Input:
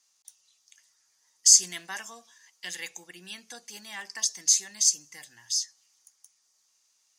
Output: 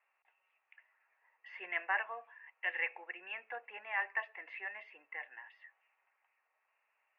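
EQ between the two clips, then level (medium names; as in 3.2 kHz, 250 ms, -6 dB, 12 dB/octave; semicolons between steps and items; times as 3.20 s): high-pass 500 Hz 24 dB/octave; rippled Chebyshev low-pass 2.7 kHz, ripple 3 dB; distance through air 79 m; +6.5 dB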